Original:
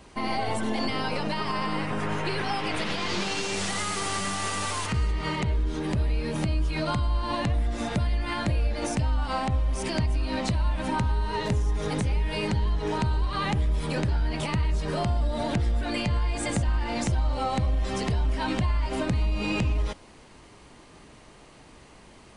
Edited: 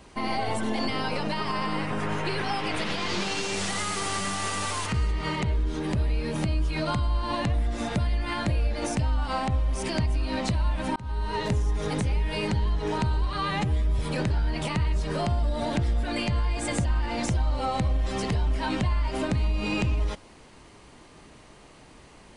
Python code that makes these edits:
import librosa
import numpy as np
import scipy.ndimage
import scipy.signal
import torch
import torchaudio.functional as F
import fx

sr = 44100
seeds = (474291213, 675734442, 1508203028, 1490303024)

y = fx.edit(x, sr, fx.fade_in_span(start_s=10.96, length_s=0.43, curve='qsin'),
    fx.stretch_span(start_s=13.33, length_s=0.44, factor=1.5), tone=tone)